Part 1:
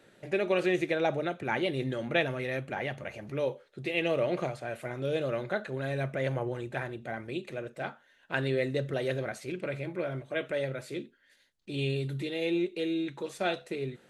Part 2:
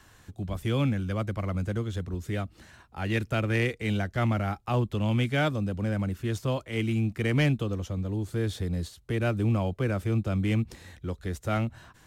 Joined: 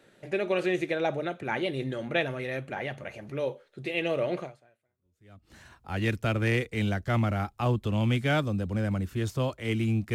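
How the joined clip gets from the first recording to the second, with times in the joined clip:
part 1
4.97 switch to part 2 from 2.05 s, crossfade 1.20 s exponential

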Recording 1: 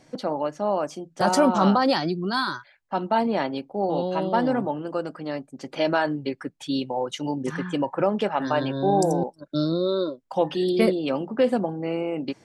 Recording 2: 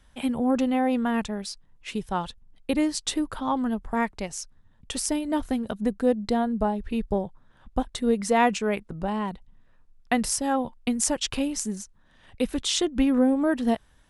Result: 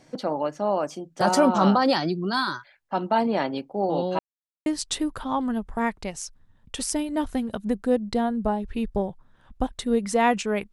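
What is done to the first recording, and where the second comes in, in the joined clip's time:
recording 1
4.19–4.66 mute
4.66 switch to recording 2 from 2.82 s

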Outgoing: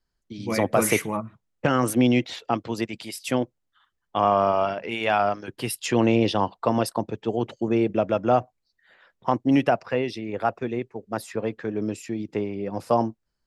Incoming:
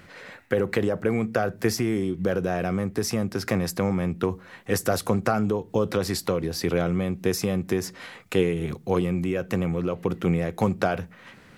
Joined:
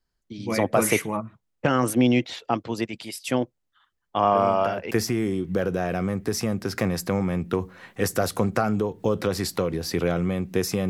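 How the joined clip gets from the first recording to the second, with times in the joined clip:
outgoing
4.32 add incoming from 1.02 s 0.59 s -8.5 dB
4.91 switch to incoming from 1.61 s

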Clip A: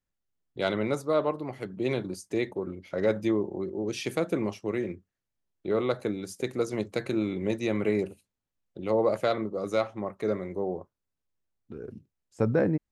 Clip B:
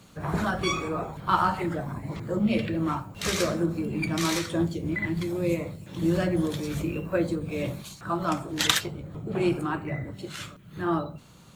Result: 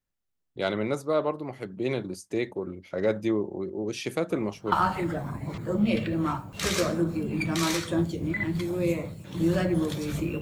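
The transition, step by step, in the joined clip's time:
clip A
4.3 add clip B from 0.92 s 0.42 s -15 dB
4.72 switch to clip B from 1.34 s

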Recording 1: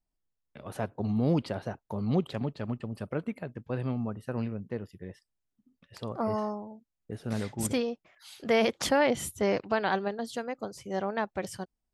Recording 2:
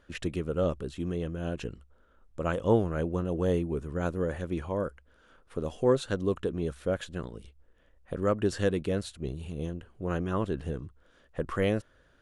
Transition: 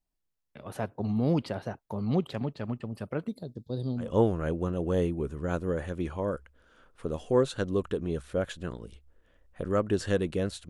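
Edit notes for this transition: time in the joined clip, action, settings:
recording 1
3.28–4.13 EQ curve 420 Hz 0 dB, 2600 Hz -26 dB, 3700 Hz +11 dB, 6100 Hz +3 dB
4.05 switch to recording 2 from 2.57 s, crossfade 0.16 s

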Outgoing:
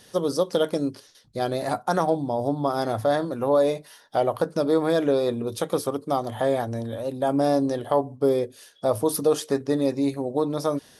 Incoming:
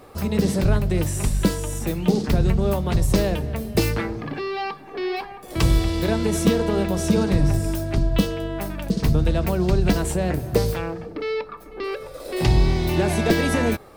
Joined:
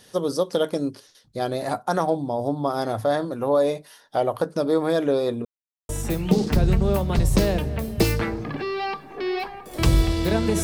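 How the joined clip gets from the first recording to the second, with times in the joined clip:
outgoing
5.45–5.89 mute
5.89 switch to incoming from 1.66 s

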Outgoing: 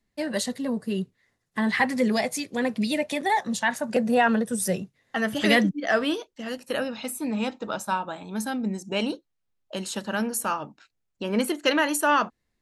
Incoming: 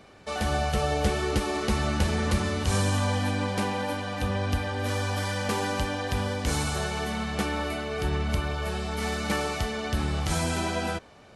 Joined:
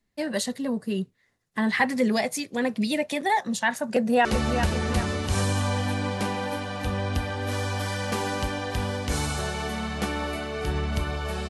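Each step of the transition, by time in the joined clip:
outgoing
3.85–4.25 echo throw 0.39 s, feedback 45%, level -7.5 dB
4.25 switch to incoming from 1.62 s

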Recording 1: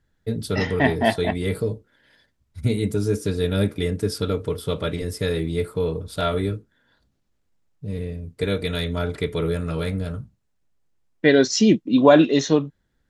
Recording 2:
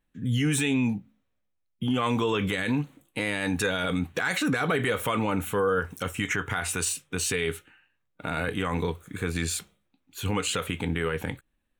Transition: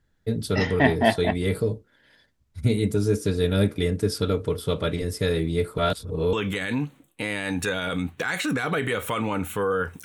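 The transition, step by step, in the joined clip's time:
recording 1
5.78–6.33 reverse
6.33 switch to recording 2 from 2.3 s

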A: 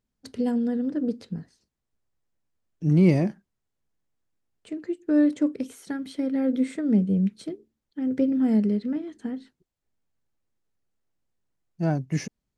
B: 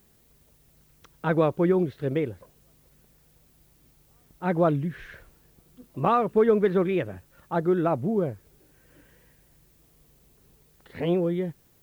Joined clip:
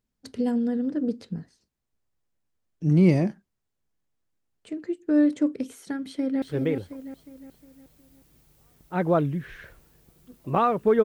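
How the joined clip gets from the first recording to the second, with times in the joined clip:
A
6.01–6.42 echo throw 0.36 s, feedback 45%, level -6 dB
6.42 switch to B from 1.92 s

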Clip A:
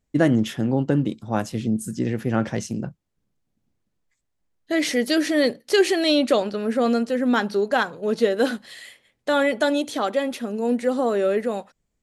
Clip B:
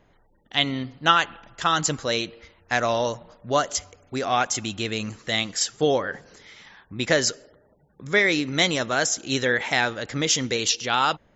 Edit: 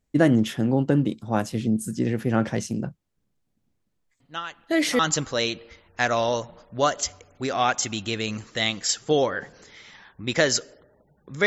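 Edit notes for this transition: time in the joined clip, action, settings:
clip A
4.2 add clip B from 0.92 s 0.79 s -15 dB
4.99 switch to clip B from 1.71 s

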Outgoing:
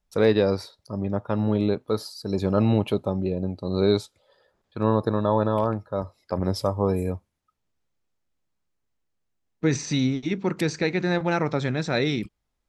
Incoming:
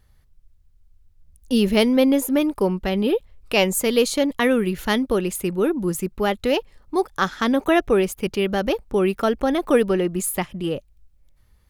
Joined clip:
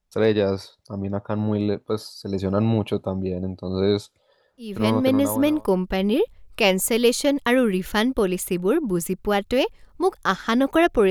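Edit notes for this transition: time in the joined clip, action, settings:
outgoing
5.11 switch to incoming from 2.04 s, crossfade 1.10 s equal-power

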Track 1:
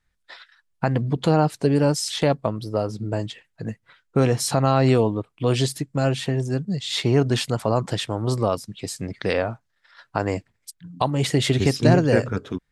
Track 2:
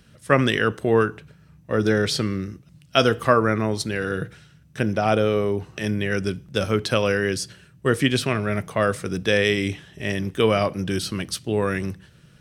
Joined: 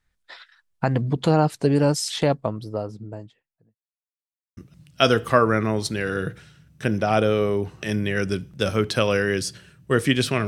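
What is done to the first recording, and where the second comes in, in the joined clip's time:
track 1
2–3.84 studio fade out
3.84–4.57 mute
4.57 switch to track 2 from 2.52 s

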